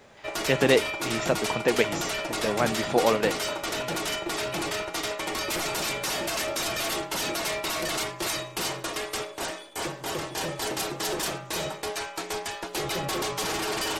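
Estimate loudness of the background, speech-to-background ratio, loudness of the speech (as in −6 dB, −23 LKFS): −29.5 LKFS, 3.0 dB, −26.5 LKFS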